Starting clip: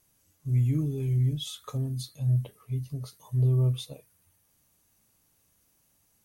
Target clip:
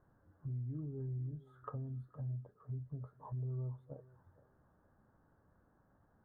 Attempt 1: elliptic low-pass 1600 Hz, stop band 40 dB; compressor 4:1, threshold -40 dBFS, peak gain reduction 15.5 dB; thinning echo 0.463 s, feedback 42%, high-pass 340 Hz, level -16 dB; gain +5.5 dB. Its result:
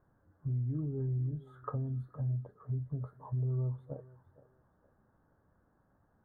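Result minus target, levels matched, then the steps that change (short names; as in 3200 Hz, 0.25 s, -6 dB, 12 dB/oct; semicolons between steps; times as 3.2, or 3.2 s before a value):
compressor: peak gain reduction -7 dB
change: compressor 4:1, threshold -49.5 dBFS, peak gain reduction 22.5 dB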